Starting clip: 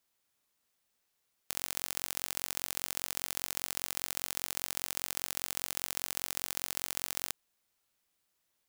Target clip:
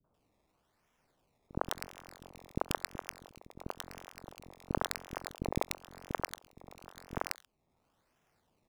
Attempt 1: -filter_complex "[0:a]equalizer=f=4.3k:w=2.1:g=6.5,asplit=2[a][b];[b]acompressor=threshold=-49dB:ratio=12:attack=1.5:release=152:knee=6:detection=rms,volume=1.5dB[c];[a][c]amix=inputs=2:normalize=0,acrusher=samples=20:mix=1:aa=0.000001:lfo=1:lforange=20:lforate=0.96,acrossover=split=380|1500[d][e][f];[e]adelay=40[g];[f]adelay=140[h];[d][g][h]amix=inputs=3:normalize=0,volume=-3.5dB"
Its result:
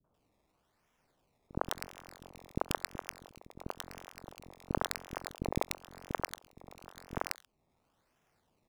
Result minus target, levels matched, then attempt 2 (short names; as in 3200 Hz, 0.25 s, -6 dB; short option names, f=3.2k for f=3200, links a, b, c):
compressor: peak gain reduction -7.5 dB
-filter_complex "[0:a]equalizer=f=4.3k:w=2.1:g=6.5,asplit=2[a][b];[b]acompressor=threshold=-57dB:ratio=12:attack=1.5:release=152:knee=6:detection=rms,volume=1.5dB[c];[a][c]amix=inputs=2:normalize=0,acrusher=samples=20:mix=1:aa=0.000001:lfo=1:lforange=20:lforate=0.96,acrossover=split=380|1500[d][e][f];[e]adelay=40[g];[f]adelay=140[h];[d][g][h]amix=inputs=3:normalize=0,volume=-3.5dB"